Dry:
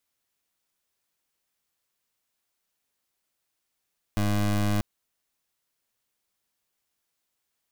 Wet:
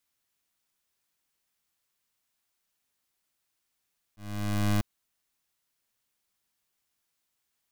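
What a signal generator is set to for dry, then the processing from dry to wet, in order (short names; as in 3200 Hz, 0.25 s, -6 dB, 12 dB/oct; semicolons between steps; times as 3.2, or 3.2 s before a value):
pulse 103 Hz, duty 23% -24 dBFS 0.64 s
bell 510 Hz -3.5 dB 1.2 oct; auto swell 0.542 s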